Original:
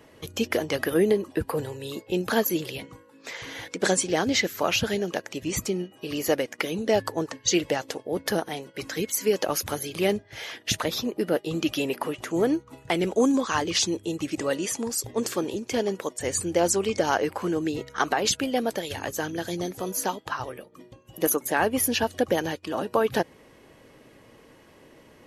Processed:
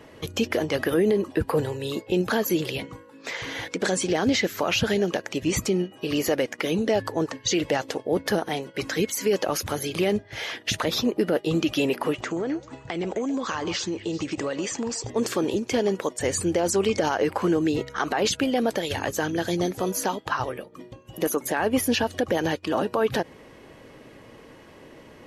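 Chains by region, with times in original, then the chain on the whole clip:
12.21–15.1 Chebyshev low-pass 8300 Hz, order 8 + compressor 10:1, threshold -29 dBFS + delay with a stepping band-pass 0.13 s, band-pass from 750 Hz, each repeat 1.4 oct, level -9 dB
whole clip: limiter -18.5 dBFS; high shelf 7600 Hz -8 dB; gain +5.5 dB

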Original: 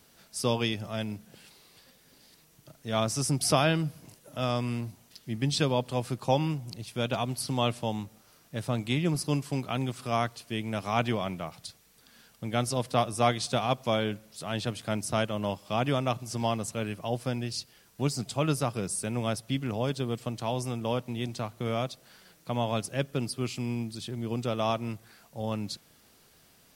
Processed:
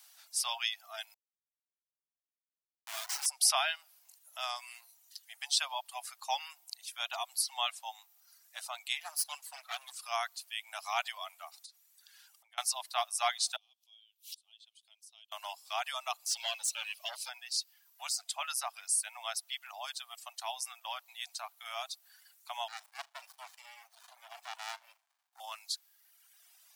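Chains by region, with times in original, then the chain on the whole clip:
1.14–3.26 Chebyshev high-pass 230 Hz + bell 2400 Hz +10 dB 1.8 oct + Schmitt trigger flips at -31.5 dBFS
9–9.94 minimum comb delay 6.9 ms + bell 11000 Hz +6 dB 0.24 oct
11.63–12.58 high shelf 9700 Hz -3 dB + compressor 8:1, threshold -48 dBFS
13.56–15.32 resonant high shelf 2300 Hz +11.5 dB, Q 3 + compressor 1.5:1, threshold -44 dBFS + flipped gate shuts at -33 dBFS, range -26 dB
16.26–17.29 band shelf 1200 Hz -15.5 dB + overdrive pedal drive 19 dB, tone 3500 Hz, clips at -19 dBFS + sample gate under -54 dBFS
22.68–25.4 flutter echo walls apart 6.6 m, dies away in 0.26 s + running maximum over 65 samples
whole clip: steep high-pass 690 Hz 72 dB/oct; reverb removal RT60 1.5 s; high shelf 2800 Hz +9.5 dB; gain -5 dB

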